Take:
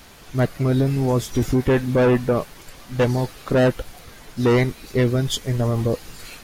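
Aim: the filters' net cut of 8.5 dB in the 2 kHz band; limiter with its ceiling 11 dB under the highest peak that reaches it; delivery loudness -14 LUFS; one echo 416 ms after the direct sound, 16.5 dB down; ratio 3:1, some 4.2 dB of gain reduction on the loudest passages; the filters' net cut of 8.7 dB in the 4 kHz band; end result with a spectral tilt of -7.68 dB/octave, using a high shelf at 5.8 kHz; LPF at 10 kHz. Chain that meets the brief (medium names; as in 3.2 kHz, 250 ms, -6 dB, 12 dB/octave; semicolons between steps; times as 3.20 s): low-pass 10 kHz; peaking EQ 2 kHz -9 dB; peaking EQ 4 kHz -6 dB; treble shelf 5.8 kHz -5.5 dB; compression 3:1, threshold -20 dBFS; peak limiter -24 dBFS; delay 416 ms -16.5 dB; trim +18.5 dB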